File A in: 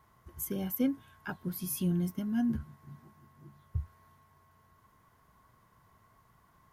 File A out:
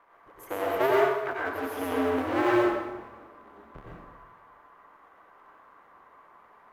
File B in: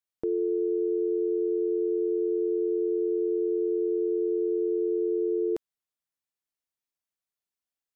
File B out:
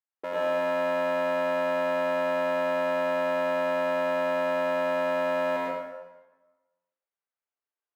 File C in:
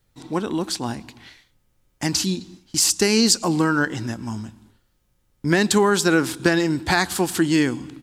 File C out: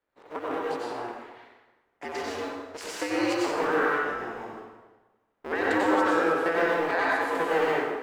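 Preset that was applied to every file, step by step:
cycle switcher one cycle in 2, inverted; three-band isolator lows -23 dB, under 350 Hz, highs -21 dB, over 2500 Hz; plate-style reverb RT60 1.2 s, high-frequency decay 0.75×, pre-delay 80 ms, DRR -5 dB; match loudness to -27 LUFS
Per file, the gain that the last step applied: +6.0, -3.5, -8.0 dB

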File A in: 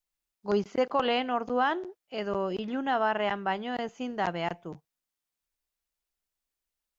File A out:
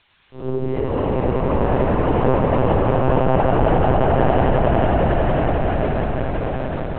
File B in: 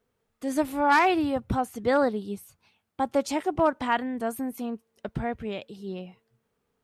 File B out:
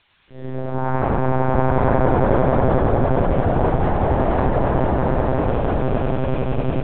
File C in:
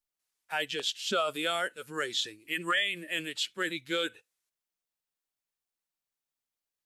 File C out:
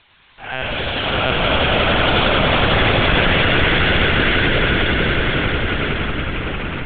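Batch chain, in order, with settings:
time blur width 0.209 s; treble ducked by the level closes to 1400 Hz, closed at -26.5 dBFS; gate with hold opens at -48 dBFS; in parallel at +1 dB: compressor 6:1, threshold -38 dBFS; on the sum: resonator 200 Hz, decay 0.48 s, harmonics all, mix 70%; added noise blue -57 dBFS; air absorption 140 m; echoes that change speed 0.1 s, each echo -2 st, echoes 3; on a send: swelling echo 91 ms, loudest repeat 8, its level -5 dB; on the sum: monotone LPC vocoder at 8 kHz 130 Hz; normalise peaks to -1.5 dBFS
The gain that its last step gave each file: +12.5, +11.5, +19.0 dB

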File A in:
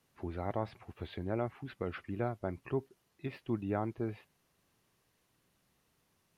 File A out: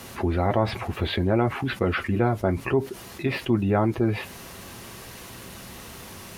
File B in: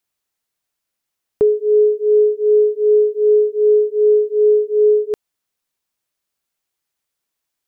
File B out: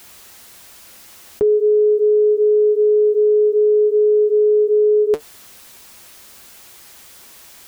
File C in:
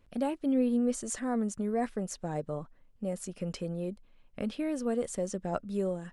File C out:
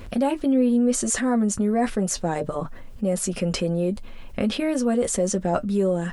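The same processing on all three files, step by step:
limiter -17 dBFS; notch comb 150 Hz; fast leveller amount 50%; normalise peaks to -9 dBFS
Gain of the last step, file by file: +12.0, +7.5, +7.0 dB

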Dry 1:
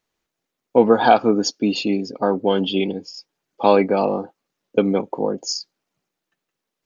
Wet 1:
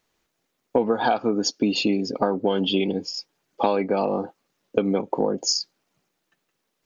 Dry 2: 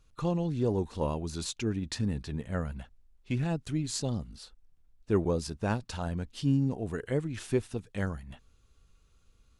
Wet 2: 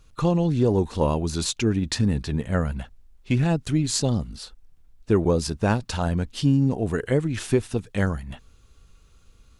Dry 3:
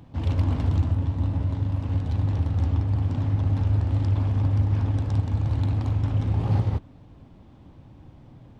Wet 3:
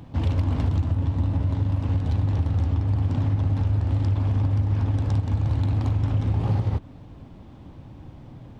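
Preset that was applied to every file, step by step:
compressor 6:1, threshold -24 dBFS; match loudness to -24 LUFS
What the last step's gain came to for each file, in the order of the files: +5.5, +9.5, +5.0 dB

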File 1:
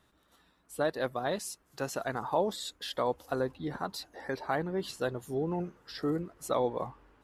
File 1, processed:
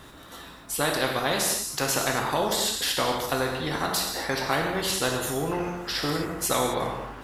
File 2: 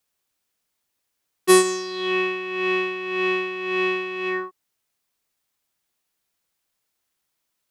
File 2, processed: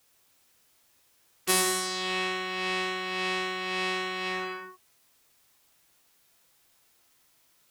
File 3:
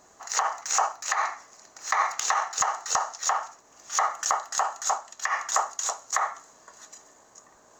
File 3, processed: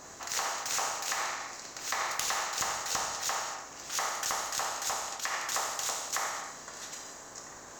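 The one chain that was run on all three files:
non-linear reverb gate 0.28 s falling, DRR 2 dB; spectral compressor 2:1; normalise peaks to -9 dBFS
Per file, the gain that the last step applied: +4.5, -6.0, -0.5 dB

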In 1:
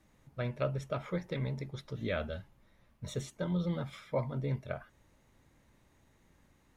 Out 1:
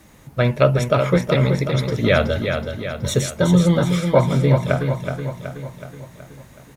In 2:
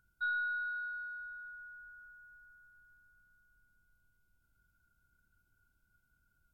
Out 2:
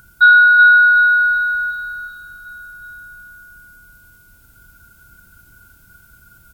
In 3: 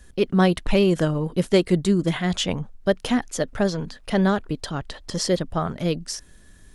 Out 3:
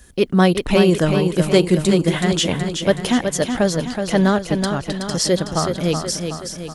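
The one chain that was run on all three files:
HPF 44 Hz 6 dB/oct; high shelf 8000 Hz +7.5 dB; on a send: feedback echo 0.373 s, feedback 54%, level -6.5 dB; on the sum: normalise peaks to -1.5 dBFS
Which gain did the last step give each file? +18.0, +26.5, +4.0 dB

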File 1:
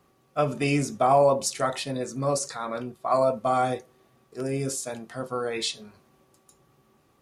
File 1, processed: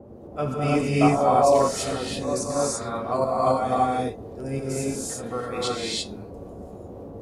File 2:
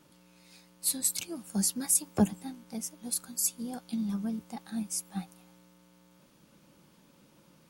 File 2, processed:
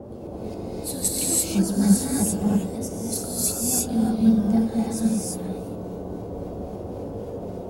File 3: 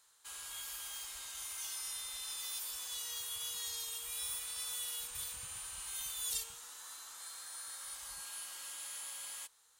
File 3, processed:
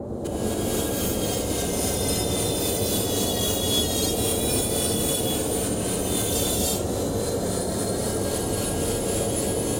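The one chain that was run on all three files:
low shelf 480 Hz +5 dB; tremolo saw up 3.7 Hz, depth 85%; band noise 37–580 Hz -44 dBFS; flange 0.23 Hz, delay 8.6 ms, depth 2.2 ms, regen -60%; non-linear reverb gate 0.37 s rising, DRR -5 dB; match loudness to -24 LUFS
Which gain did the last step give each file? +2.5, +9.0, +15.5 dB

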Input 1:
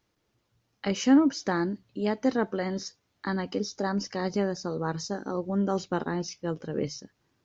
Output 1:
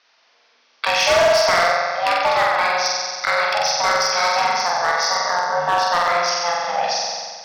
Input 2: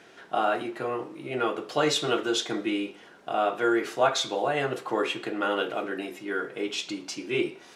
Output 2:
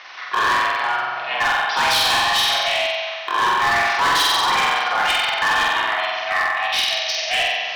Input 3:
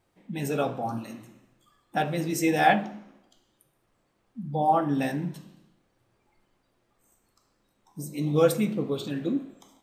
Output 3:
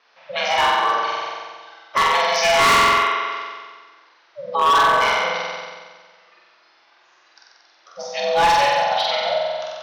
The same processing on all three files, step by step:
steep low-pass 5700 Hz 96 dB/oct; ring modulator 350 Hz; HPF 1100 Hz 12 dB/oct; on a send: flutter echo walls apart 7.9 m, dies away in 1.5 s; on the sum: overloaded stage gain 29 dB; in parallel at -1 dB: compressor, threshold -42 dBFS; on the sum: match loudness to -18 LUFS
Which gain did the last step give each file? +16.0, +12.5, +15.0 dB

